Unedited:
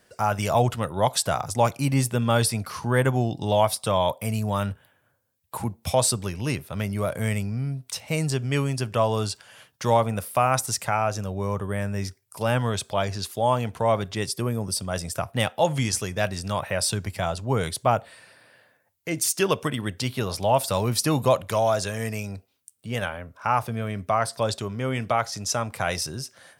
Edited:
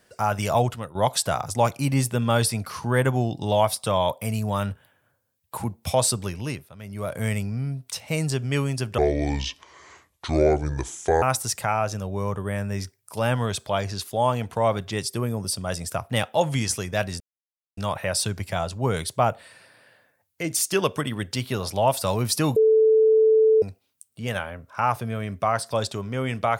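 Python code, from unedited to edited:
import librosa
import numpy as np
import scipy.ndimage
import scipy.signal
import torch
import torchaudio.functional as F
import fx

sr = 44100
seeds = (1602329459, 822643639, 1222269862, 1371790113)

y = fx.edit(x, sr, fx.fade_out_to(start_s=0.57, length_s=0.38, floor_db=-12.5),
    fx.fade_down_up(start_s=6.31, length_s=0.93, db=-15.5, fade_s=0.46),
    fx.speed_span(start_s=8.98, length_s=1.48, speed=0.66),
    fx.insert_silence(at_s=16.44, length_s=0.57),
    fx.bleep(start_s=21.23, length_s=1.06, hz=439.0, db=-13.5), tone=tone)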